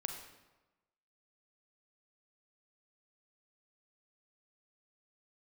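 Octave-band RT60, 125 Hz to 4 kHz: 1.1, 1.1, 1.1, 1.1, 0.95, 0.80 s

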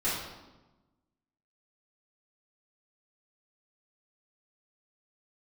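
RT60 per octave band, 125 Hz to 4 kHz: 1.5, 1.5, 1.1, 1.1, 0.85, 0.80 s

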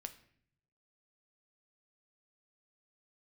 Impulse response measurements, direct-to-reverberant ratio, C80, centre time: 8.5 dB, 17.5 dB, 6 ms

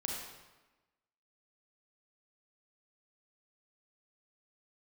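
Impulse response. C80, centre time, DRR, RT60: 3.0 dB, 67 ms, -1.5 dB, 1.1 s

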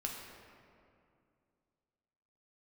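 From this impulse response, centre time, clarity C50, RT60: 81 ms, 2.5 dB, 2.4 s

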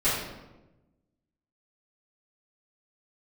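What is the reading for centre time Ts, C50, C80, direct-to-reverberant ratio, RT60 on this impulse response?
65 ms, 1.0 dB, 4.0 dB, -15.5 dB, 1.1 s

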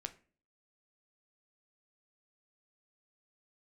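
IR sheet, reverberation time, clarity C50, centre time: 0.40 s, 16.5 dB, 5 ms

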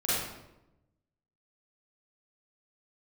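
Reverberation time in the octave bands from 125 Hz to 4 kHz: 1.4, 1.2, 1.0, 0.85, 0.75, 0.65 s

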